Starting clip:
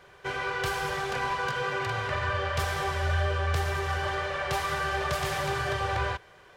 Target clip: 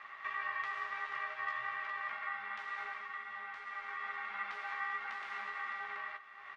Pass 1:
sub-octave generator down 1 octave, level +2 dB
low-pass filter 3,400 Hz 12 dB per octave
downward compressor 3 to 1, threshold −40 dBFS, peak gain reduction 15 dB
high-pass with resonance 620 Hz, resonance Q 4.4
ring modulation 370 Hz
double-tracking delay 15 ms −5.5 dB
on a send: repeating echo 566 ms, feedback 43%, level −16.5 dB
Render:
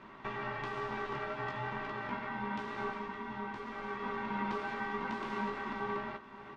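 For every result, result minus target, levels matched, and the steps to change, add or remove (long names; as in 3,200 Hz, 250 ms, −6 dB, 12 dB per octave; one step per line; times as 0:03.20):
500 Hz band +16.0 dB; downward compressor: peak gain reduction −4.5 dB
change: high-pass with resonance 1,500 Hz, resonance Q 4.4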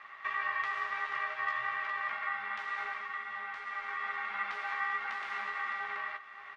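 downward compressor: peak gain reduction −4.5 dB
change: downward compressor 3 to 1, threshold −47 dBFS, peak gain reduction 20 dB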